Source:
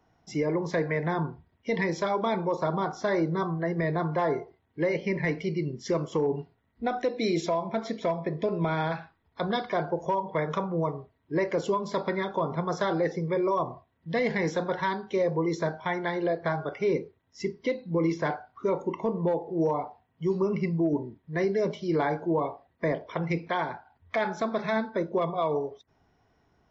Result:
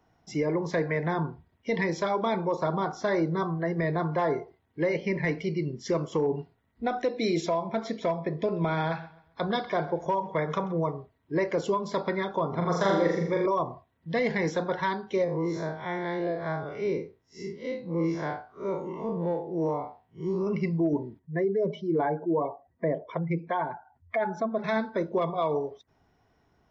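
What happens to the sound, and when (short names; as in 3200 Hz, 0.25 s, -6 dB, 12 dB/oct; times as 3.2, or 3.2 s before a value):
8.43–10.79 feedback echo 0.132 s, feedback 35%, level -19.5 dB
12.49–13.46 flutter echo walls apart 7 m, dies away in 0.78 s
15.24–20.47 time blur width 0.112 s
21.19–24.64 spectral contrast raised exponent 1.6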